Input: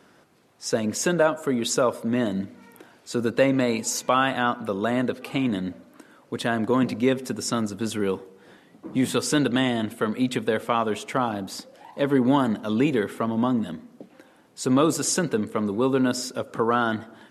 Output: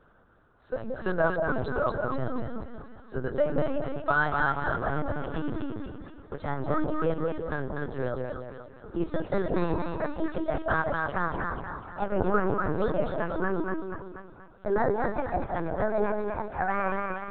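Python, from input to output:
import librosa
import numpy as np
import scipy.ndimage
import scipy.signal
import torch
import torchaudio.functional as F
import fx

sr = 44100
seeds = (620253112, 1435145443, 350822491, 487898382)

y = fx.pitch_glide(x, sr, semitones=9.0, runs='starting unshifted')
y = fx.high_shelf_res(y, sr, hz=1800.0, db=-6.5, q=3.0)
y = fx.echo_split(y, sr, split_hz=860.0, low_ms=179, high_ms=241, feedback_pct=52, wet_db=-3.0)
y = fx.lpc_vocoder(y, sr, seeds[0], excitation='pitch_kept', order=10)
y = y * 10.0 ** (-5.5 / 20.0)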